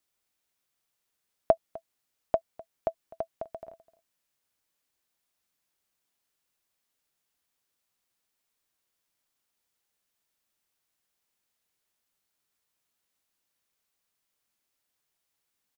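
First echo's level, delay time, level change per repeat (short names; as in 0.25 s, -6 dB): -20.5 dB, 0.253 s, no steady repeat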